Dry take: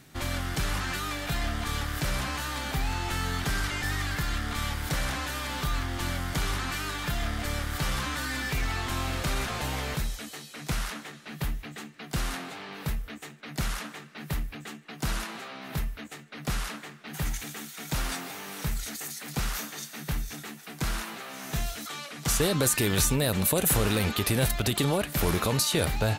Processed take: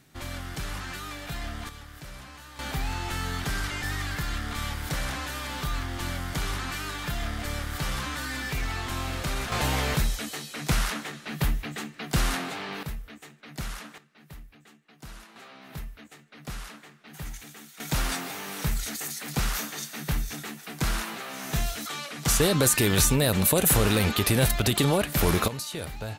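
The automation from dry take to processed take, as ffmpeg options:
-af "asetnsamples=n=441:p=0,asendcmd='1.69 volume volume -13.5dB;2.59 volume volume -1dB;9.52 volume volume 5.5dB;12.83 volume volume -4.5dB;13.98 volume volume -14dB;15.36 volume volume -7dB;17.8 volume volume 3dB;25.48 volume volume -9dB',volume=-5dB"

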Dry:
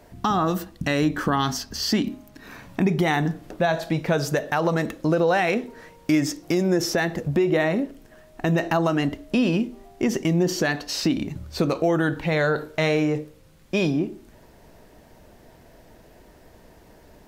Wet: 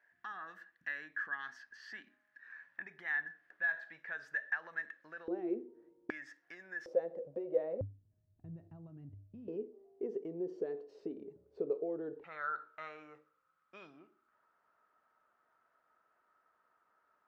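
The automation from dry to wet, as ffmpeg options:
-af "asetnsamples=n=441:p=0,asendcmd='5.28 bandpass f 350;6.1 bandpass f 1700;6.86 bandpass f 520;7.81 bandpass f 100;9.48 bandpass f 430;12.24 bandpass f 1300',bandpass=f=1.7k:t=q:w=17:csg=0"

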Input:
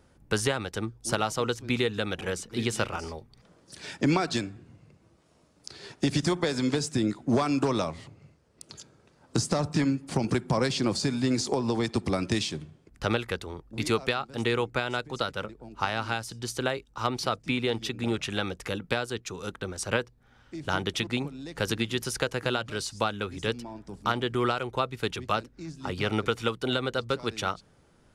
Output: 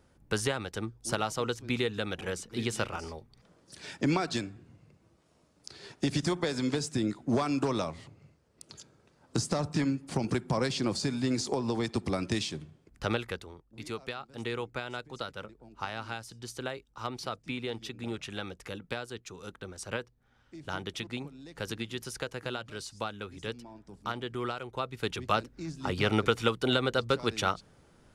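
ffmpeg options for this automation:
-af "volume=12dB,afade=t=out:st=13.22:d=0.43:silence=0.281838,afade=t=in:st=13.65:d=0.89:silence=0.473151,afade=t=in:st=24.71:d=0.77:silence=0.354813"

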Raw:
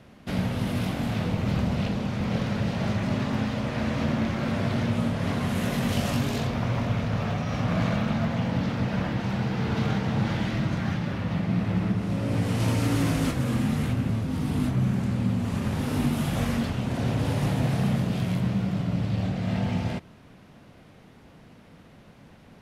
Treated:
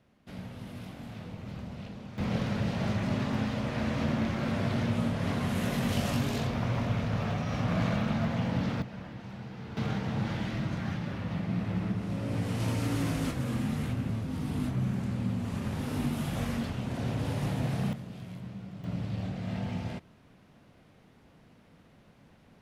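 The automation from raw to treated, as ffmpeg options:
-af "asetnsamples=n=441:p=0,asendcmd='2.18 volume volume -3.5dB;8.82 volume volume -15dB;9.77 volume volume -6dB;17.93 volume volume -16dB;18.84 volume volume -7.5dB',volume=-15dB"

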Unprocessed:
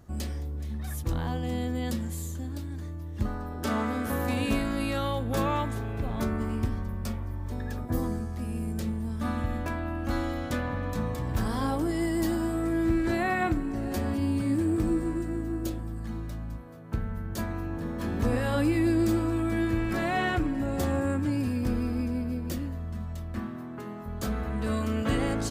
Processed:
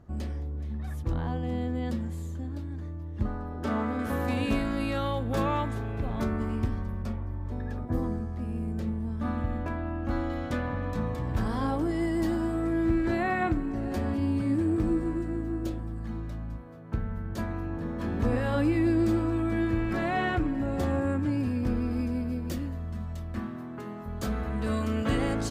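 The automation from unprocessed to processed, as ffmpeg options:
-af "asetnsamples=n=441:p=0,asendcmd='3.99 lowpass f 4000;7.02 lowpass f 1500;10.3 lowpass f 2900;21.91 lowpass f 7700',lowpass=f=1.6k:p=1"

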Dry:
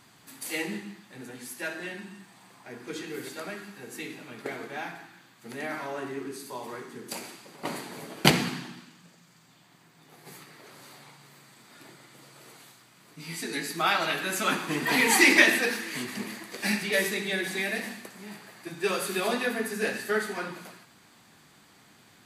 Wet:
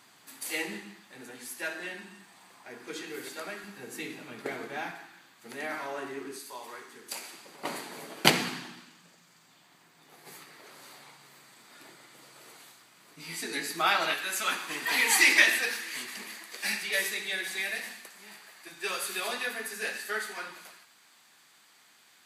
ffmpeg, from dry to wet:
-af "asetnsamples=n=441:p=0,asendcmd='3.64 highpass f 120;4.91 highpass f 400;6.39 highpass f 1100;7.33 highpass f 380;14.14 highpass f 1400',highpass=f=430:p=1"

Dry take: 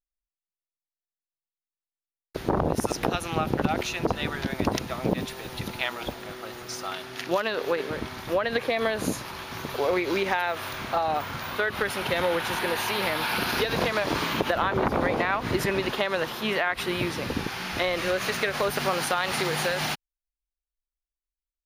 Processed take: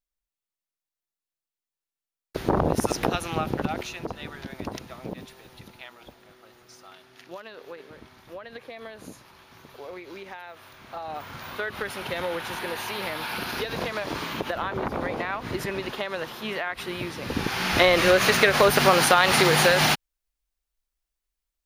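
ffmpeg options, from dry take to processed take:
-af "volume=25dB,afade=t=out:st=2.93:d=1.18:silence=0.298538,afade=t=out:st=4.75:d=1.12:silence=0.473151,afade=t=in:st=10.8:d=0.68:silence=0.298538,afade=t=in:st=17.2:d=0.55:silence=0.237137"

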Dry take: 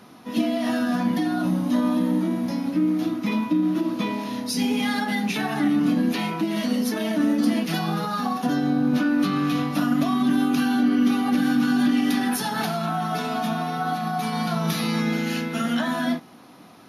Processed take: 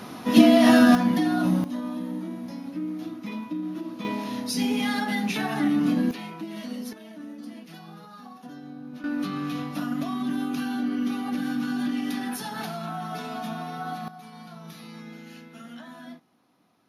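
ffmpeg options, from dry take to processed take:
-af "asetnsamples=n=441:p=0,asendcmd='0.95 volume volume 0.5dB;1.64 volume volume -10dB;4.05 volume volume -2dB;6.11 volume volume -11dB;6.93 volume volume -19dB;9.04 volume volume -7.5dB;14.08 volume volume -18.5dB',volume=8.5dB"

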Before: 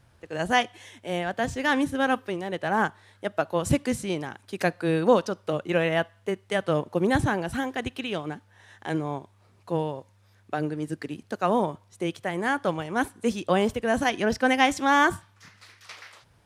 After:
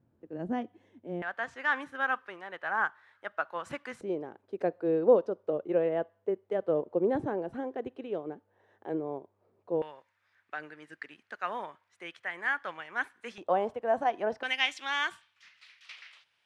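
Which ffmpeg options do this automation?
-af "asetnsamples=n=441:p=0,asendcmd='1.22 bandpass f 1400;4.01 bandpass f 450;9.82 bandpass f 1800;13.38 bandpass f 730;14.43 bandpass f 2800',bandpass=f=270:t=q:w=2:csg=0"

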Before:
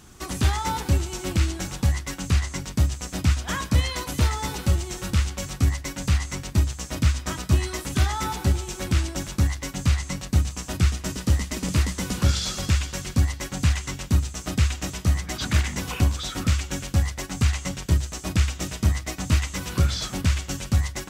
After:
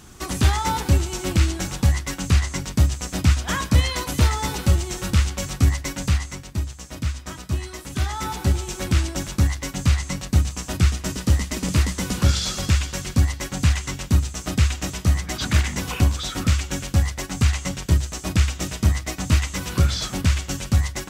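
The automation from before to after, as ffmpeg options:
-af "volume=11dB,afade=t=out:st=5.93:d=0.51:silence=0.375837,afade=t=in:st=7.82:d=0.83:silence=0.421697"

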